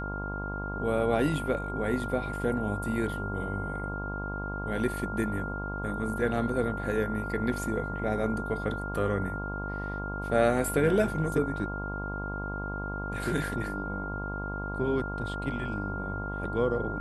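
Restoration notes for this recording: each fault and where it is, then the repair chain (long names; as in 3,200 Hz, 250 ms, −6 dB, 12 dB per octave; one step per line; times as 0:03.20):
mains buzz 50 Hz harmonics 22 −36 dBFS
whistle 1,400 Hz −36 dBFS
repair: notch filter 1,400 Hz, Q 30
hum removal 50 Hz, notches 22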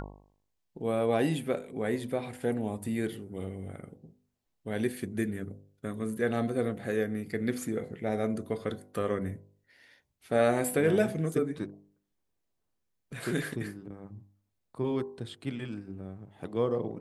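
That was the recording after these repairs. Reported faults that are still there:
none of them is left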